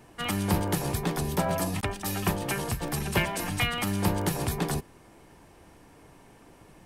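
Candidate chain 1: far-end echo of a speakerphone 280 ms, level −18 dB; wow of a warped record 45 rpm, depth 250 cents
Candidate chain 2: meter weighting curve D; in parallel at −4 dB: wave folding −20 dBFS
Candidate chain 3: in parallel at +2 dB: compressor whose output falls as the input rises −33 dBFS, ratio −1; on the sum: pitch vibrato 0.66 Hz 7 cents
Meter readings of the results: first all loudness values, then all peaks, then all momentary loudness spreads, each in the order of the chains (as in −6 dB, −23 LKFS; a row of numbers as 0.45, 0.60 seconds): −29.0, −22.0, −24.0 LKFS; −12.0, −4.5, −9.0 dBFS; 4, 6, 2 LU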